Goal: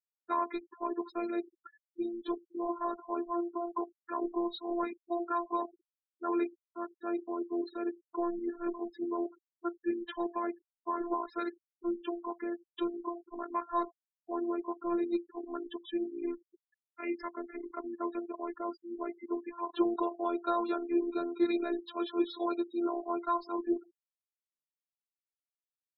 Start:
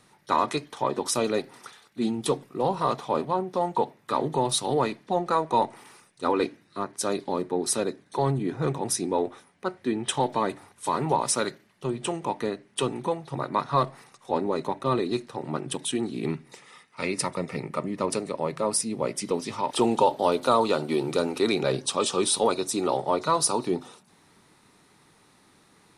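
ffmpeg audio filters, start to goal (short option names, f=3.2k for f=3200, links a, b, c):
-af "highpass=110,equalizer=f=390:t=q:w=4:g=7,equalizer=f=920:t=q:w=4:g=3,equalizer=f=1.6k:t=q:w=4:g=10,equalizer=f=2.7k:t=q:w=4:g=-4,lowpass=f=3.6k:w=0.5412,lowpass=f=3.6k:w=1.3066,afftfilt=real='hypot(re,im)*cos(PI*b)':imag='0':win_size=512:overlap=0.75,afftfilt=real='re*gte(hypot(re,im),0.0282)':imag='im*gte(hypot(re,im),0.0282)':win_size=1024:overlap=0.75,volume=-7.5dB"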